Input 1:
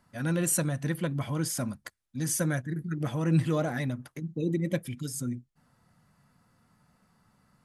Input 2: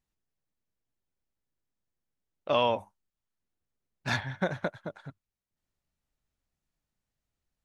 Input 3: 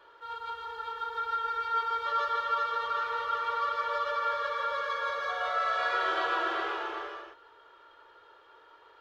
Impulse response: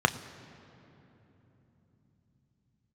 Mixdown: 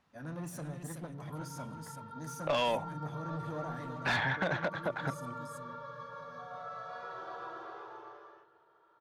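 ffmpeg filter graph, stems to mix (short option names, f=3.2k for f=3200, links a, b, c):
-filter_complex "[0:a]asoftclip=type=tanh:threshold=-29dB,volume=-14dB,asplit=3[a][b][c];[b]volume=-10.5dB[d];[c]volume=-3dB[e];[1:a]lowpass=5.4k,acrossover=split=260|3000[f][g][h];[g]acompressor=threshold=-32dB:ratio=6[i];[f][i][h]amix=inputs=3:normalize=0,asplit=2[j][k];[k]highpass=f=720:p=1,volume=24dB,asoftclip=type=tanh:threshold=-11.5dB[l];[j][l]amix=inputs=2:normalize=0,lowpass=f=2k:p=1,volume=-6dB,volume=1dB[m];[2:a]adynamicequalizer=threshold=0.00794:dfrequency=1900:dqfactor=0.72:tfrequency=1900:tqfactor=0.72:attack=5:release=100:ratio=0.375:range=2.5:mode=cutabove:tftype=bell,adelay=1100,volume=-17dB,asplit=2[n][o];[o]volume=-12dB[p];[3:a]atrim=start_sample=2205[q];[d][p]amix=inputs=2:normalize=0[r];[r][q]afir=irnorm=-1:irlink=0[s];[e]aecho=0:1:377:1[t];[a][m][n][s][t]amix=inputs=5:normalize=0,alimiter=limit=-23dB:level=0:latency=1:release=204"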